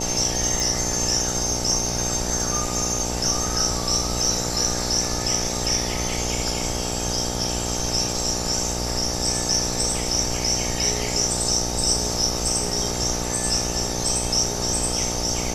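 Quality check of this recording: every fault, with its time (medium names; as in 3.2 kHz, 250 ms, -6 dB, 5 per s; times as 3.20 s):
buzz 60 Hz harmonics 15 -29 dBFS
0.60 s: pop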